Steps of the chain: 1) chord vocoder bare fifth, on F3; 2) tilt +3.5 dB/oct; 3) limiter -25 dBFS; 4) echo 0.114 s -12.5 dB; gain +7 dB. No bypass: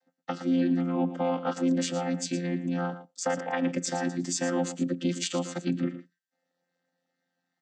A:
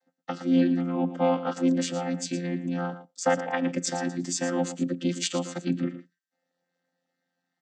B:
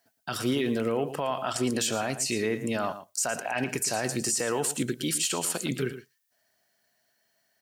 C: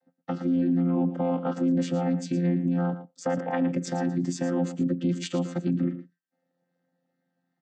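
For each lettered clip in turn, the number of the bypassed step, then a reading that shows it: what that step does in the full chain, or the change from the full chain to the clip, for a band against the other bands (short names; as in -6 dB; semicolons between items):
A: 3, crest factor change +4.5 dB; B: 1, 250 Hz band -7.0 dB; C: 2, 8 kHz band -8.5 dB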